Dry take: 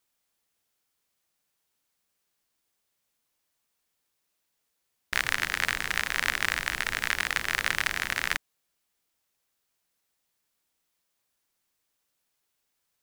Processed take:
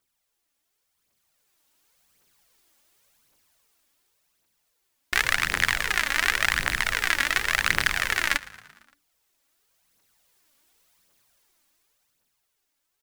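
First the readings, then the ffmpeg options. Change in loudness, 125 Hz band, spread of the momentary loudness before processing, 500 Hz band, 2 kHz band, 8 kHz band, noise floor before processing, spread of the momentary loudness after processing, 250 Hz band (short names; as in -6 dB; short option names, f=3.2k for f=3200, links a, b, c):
+4.5 dB, +5.5 dB, 3 LU, +4.5 dB, +4.5 dB, +4.5 dB, -79 dBFS, 3 LU, +4.0 dB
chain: -filter_complex "[0:a]dynaudnorm=f=190:g=17:m=13dB,aphaser=in_gain=1:out_gain=1:delay=3.7:decay=0.52:speed=0.9:type=triangular,asplit=6[a][b][c][d][e][f];[b]adelay=114,afreqshift=-59,volume=-20dB[g];[c]adelay=228,afreqshift=-118,volume=-24.3dB[h];[d]adelay=342,afreqshift=-177,volume=-28.6dB[i];[e]adelay=456,afreqshift=-236,volume=-32.9dB[j];[f]adelay=570,afreqshift=-295,volume=-37.2dB[k];[a][g][h][i][j][k]amix=inputs=6:normalize=0,volume=-1dB"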